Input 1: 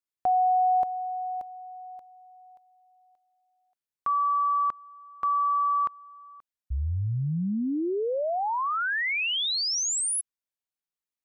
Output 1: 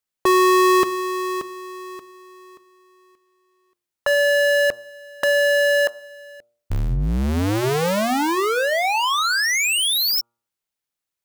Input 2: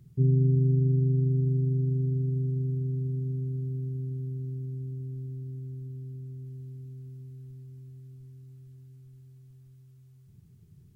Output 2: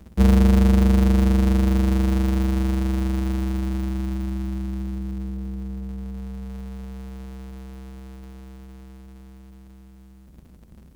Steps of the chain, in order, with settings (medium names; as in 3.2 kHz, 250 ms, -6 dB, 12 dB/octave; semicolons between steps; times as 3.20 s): cycle switcher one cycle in 2, inverted; de-hum 117.5 Hz, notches 12; trim +7.5 dB